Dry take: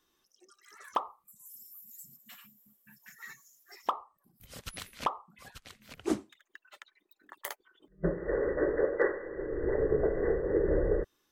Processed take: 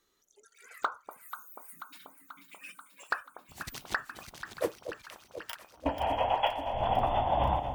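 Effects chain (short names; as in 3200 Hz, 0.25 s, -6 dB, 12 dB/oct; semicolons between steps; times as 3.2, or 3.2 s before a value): speed glide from 110% -> 182%; echo with dull and thin repeats by turns 0.243 s, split 900 Hz, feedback 83%, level -9 dB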